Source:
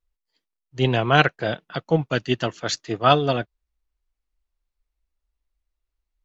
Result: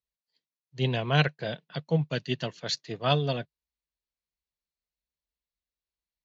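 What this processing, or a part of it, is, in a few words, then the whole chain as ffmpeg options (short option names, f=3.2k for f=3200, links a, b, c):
car door speaker: -af "highpass=100,equalizer=f=150:t=q:w=4:g=7,equalizer=f=320:t=q:w=4:g=-7,equalizer=f=780:t=q:w=4:g=-5,equalizer=f=1.3k:t=q:w=4:g=-9,equalizer=f=4.2k:t=q:w=4:g=6,lowpass=f=6.9k:w=0.5412,lowpass=f=6.9k:w=1.3066,volume=-6.5dB"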